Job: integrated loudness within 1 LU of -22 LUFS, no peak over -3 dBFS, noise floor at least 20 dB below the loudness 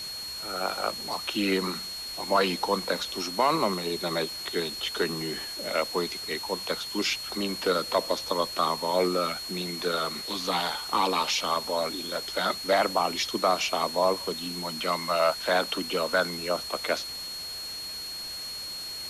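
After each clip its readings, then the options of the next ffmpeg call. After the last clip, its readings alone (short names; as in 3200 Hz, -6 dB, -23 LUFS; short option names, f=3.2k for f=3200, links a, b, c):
steady tone 4300 Hz; tone level -35 dBFS; noise floor -37 dBFS; noise floor target -48 dBFS; loudness -28.0 LUFS; peak -12.0 dBFS; loudness target -22.0 LUFS
-> -af "bandreject=f=4.3k:w=30"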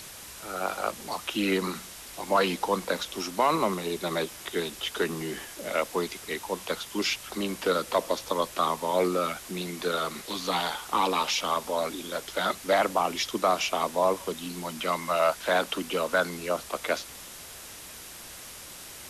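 steady tone none; noise floor -44 dBFS; noise floor target -49 dBFS
-> -af "afftdn=nr=6:nf=-44"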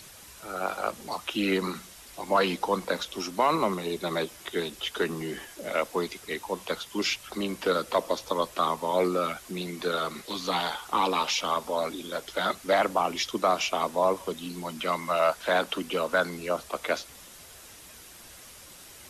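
noise floor -49 dBFS; loudness -28.5 LUFS; peak -12.5 dBFS; loudness target -22.0 LUFS
-> -af "volume=6.5dB"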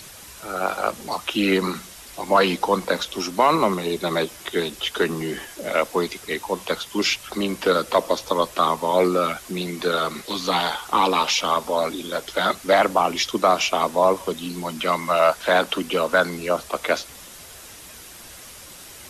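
loudness -22.0 LUFS; peak -6.0 dBFS; noise floor -42 dBFS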